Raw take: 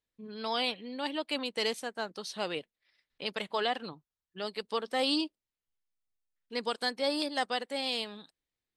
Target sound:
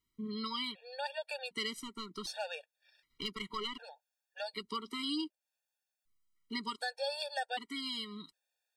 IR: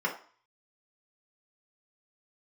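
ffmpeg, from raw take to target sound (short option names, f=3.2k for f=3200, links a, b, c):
-filter_complex "[0:a]equalizer=f=460:t=o:w=0.4:g=-8,acompressor=threshold=-45dB:ratio=2.5,asettb=1/sr,asplit=3[a][b][c];[a]atrim=end=1.734[d];[b]atrim=start=1.73:end=4.45,asetpts=PTS-STARTPTS,afade=t=in:d=0.004:c=qsin,afade=t=out:st=2.716:d=0.004:c=qsin,aeval=exprs='0.0501*(cos(1*acos(clip(val(0)/0.0501,-1,1)))-cos(1*PI/2))+0.00282*(cos(6*acos(clip(val(0)/0.0501,-1,1)))-cos(6*PI/2))':c=same[e];[c]atrim=start=4.446[f];[d][e]acrossfade=d=0.004:c1=hsin:c2=qsin[g];[g][f]acrossfade=d=0.004:c1=qsin:c2=hsin,volume=30.5dB,asoftclip=hard,volume=-30.5dB,afftfilt=real='re*gt(sin(2*PI*0.66*pts/sr)*(1-2*mod(floor(b*sr/1024/470),2)),0)':imag='im*gt(sin(2*PI*0.66*pts/sr)*(1-2*mod(floor(b*sr/1024/470),2)),0)':win_size=1024:overlap=0.75,volume=8dB"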